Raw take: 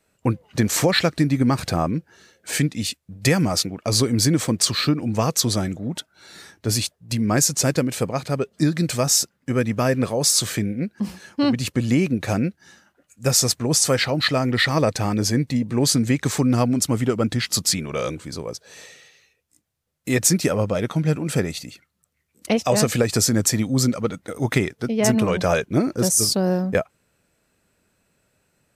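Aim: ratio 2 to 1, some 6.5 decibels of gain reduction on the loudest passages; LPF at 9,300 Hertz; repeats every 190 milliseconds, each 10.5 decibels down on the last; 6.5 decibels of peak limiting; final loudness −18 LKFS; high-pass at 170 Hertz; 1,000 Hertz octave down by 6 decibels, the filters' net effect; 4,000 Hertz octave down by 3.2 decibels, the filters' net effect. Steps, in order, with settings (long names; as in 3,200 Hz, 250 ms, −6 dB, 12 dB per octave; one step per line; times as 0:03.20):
high-pass filter 170 Hz
low-pass filter 9,300 Hz
parametric band 1,000 Hz −8.5 dB
parametric band 4,000 Hz −3.5 dB
downward compressor 2 to 1, threshold −28 dBFS
brickwall limiter −18.5 dBFS
repeating echo 190 ms, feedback 30%, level −10.5 dB
level +11.5 dB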